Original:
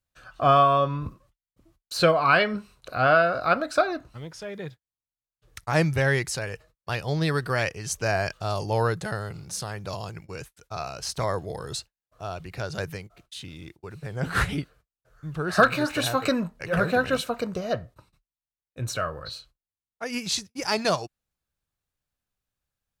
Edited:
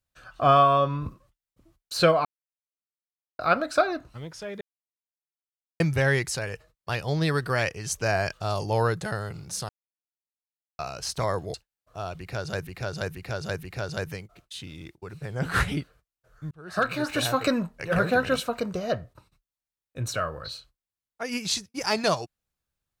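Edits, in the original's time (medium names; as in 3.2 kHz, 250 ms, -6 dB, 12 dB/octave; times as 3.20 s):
2.25–3.39 s: mute
4.61–5.80 s: mute
9.69–10.79 s: mute
11.54–11.79 s: delete
12.44–12.92 s: loop, 4 plays
15.32–16.01 s: fade in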